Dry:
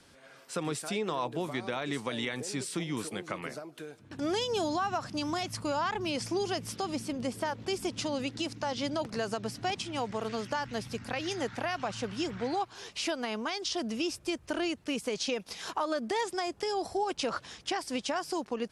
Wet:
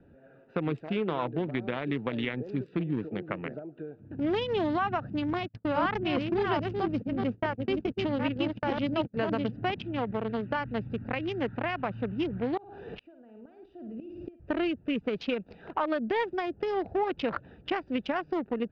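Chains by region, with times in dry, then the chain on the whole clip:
5.33–9.53 reverse delay 0.422 s, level -3 dB + gate -37 dBFS, range -34 dB
12.57–14.4 flutter echo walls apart 9.3 m, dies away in 0.43 s + flipped gate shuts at -26 dBFS, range -24 dB + backwards sustainer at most 23 dB/s
whole clip: Wiener smoothing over 41 samples; LPF 3000 Hz 24 dB/oct; dynamic EQ 700 Hz, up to -3 dB, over -41 dBFS, Q 0.71; gain +6 dB

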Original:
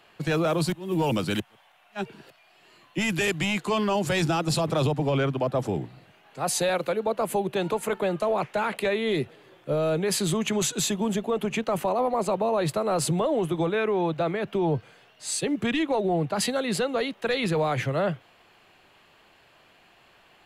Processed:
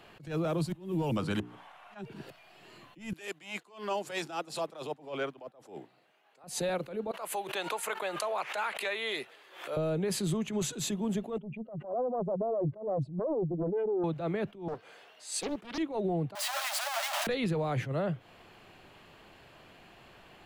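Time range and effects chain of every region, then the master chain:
1.17–1.99 LPF 11000 Hz + bell 1100 Hz +9 dB 1.2 oct + notches 60/120/180/240/300/360/420/480 Hz
3.13–6.44 HPF 500 Hz + upward expander, over -48 dBFS
7.11–9.77 HPF 1000 Hz + backwards sustainer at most 110 dB/s
11.38–14.04 spectral contrast raised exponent 2.4 + tape spacing loss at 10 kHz 43 dB + Doppler distortion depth 0.81 ms
14.68–15.78 HPF 470 Hz + Doppler distortion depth 0.61 ms
16.35–17.27 infinite clipping + Chebyshev high-pass 580 Hz, order 10
whole clip: low shelf 480 Hz +8 dB; compressor 5:1, threshold -29 dBFS; attack slew limiter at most 140 dB/s

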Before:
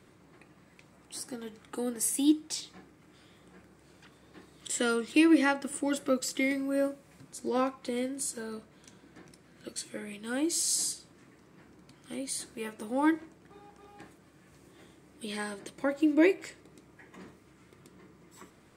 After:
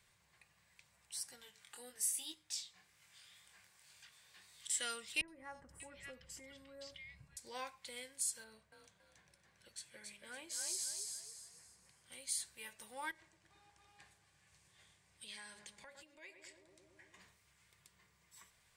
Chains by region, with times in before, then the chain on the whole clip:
1.41–4.68 chorus 1.9 Hz, delay 19.5 ms, depth 4 ms + mismatched tape noise reduction encoder only
5.21–7.37 RIAA curve playback + compressor 3:1, threshold -30 dBFS + three bands offset in time lows, highs, mids 70/590 ms, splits 1700/5400 Hz
8.44–12.12 high shelf 2500 Hz -9.5 dB + frequency-shifting echo 0.279 s, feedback 36%, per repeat +40 Hz, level -3.5 dB
13.11–17.2 LPF 10000 Hz + darkening echo 0.11 s, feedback 82%, low-pass 1100 Hz, level -12 dB + compressor 5:1, threshold -37 dBFS
whole clip: passive tone stack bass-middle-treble 10-0-10; notch 1300 Hz, Q 7.4; gain -2.5 dB

